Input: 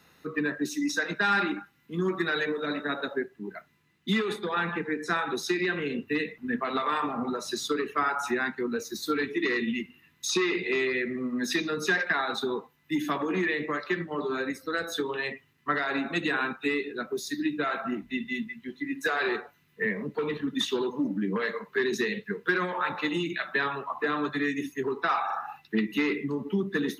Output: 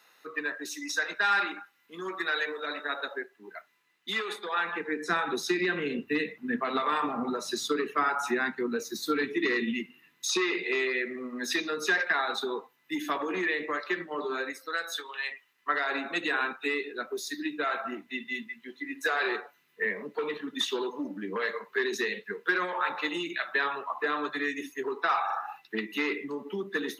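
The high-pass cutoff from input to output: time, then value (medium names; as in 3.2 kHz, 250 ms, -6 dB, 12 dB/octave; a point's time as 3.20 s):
4.64 s 590 Hz
5.14 s 170 Hz
9.62 s 170 Hz
10.48 s 370 Hz
14.32 s 370 Hz
15.18 s 1.4 kHz
15.84 s 390 Hz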